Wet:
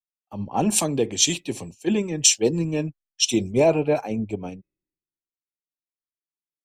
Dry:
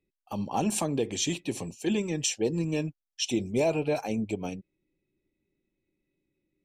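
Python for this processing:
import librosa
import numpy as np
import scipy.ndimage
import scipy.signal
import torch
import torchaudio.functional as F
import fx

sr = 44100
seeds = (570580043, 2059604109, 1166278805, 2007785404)

y = fx.band_widen(x, sr, depth_pct=100)
y = F.gain(torch.from_numpy(y), 5.0).numpy()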